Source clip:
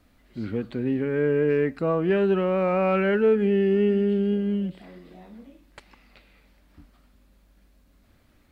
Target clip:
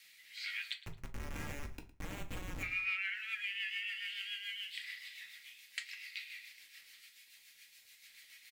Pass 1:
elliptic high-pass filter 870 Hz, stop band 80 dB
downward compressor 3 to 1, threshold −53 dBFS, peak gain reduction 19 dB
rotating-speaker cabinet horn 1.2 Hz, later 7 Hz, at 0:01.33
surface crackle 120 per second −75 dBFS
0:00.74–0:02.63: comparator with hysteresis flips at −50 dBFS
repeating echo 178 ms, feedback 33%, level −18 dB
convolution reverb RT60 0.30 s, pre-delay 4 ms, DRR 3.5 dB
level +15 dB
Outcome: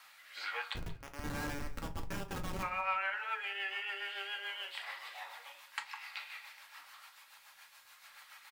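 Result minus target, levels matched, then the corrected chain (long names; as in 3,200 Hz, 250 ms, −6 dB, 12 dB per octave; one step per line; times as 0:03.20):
1,000 Hz band +14.0 dB; echo 68 ms late
elliptic high-pass filter 2,000 Hz, stop band 80 dB
downward compressor 3 to 1, threshold −53 dBFS, peak gain reduction 15 dB
rotating-speaker cabinet horn 1.2 Hz, later 7 Hz, at 0:01.33
surface crackle 120 per second −75 dBFS
0:00.74–0:02.63: comparator with hysteresis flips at −50 dBFS
repeating echo 110 ms, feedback 33%, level −18 dB
convolution reverb RT60 0.30 s, pre-delay 4 ms, DRR 3.5 dB
level +15 dB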